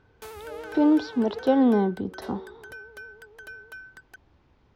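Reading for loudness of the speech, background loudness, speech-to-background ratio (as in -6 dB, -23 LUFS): -24.0 LUFS, -42.5 LUFS, 18.5 dB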